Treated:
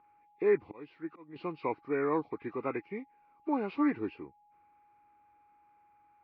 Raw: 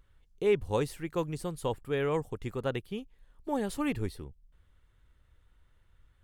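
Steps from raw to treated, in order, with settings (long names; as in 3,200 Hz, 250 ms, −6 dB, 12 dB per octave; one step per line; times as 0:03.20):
hearing-aid frequency compression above 1,100 Hz 1.5 to 1
steady tone 830 Hz −63 dBFS
0:00.63–0:01.36: volume swells 635 ms
loudspeaker in its box 260–2,700 Hz, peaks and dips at 310 Hz +8 dB, 550 Hz −6 dB, 1,100 Hz +6 dB, 1,700 Hz −3 dB, 2,400 Hz +5 dB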